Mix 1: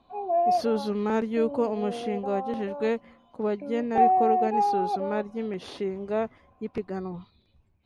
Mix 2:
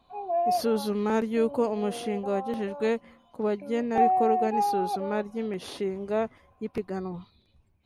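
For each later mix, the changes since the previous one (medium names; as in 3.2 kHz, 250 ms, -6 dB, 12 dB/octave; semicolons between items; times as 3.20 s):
background: add bass shelf 440 Hz -9.5 dB; master: remove distance through air 65 m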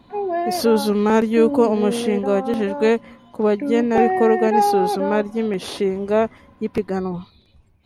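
speech +9.5 dB; background: remove vowel filter a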